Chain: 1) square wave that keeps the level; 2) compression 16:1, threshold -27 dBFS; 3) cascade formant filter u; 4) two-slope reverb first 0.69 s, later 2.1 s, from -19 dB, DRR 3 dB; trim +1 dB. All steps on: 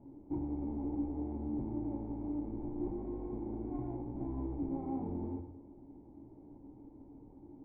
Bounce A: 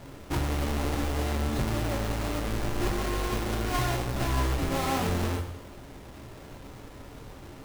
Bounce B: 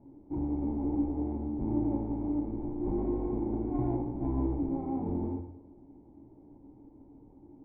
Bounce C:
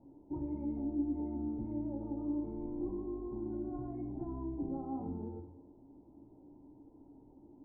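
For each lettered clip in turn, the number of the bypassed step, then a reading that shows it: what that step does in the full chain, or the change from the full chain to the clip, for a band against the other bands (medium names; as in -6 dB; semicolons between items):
3, 250 Hz band -10.5 dB; 2, mean gain reduction 4.5 dB; 1, distortion -5 dB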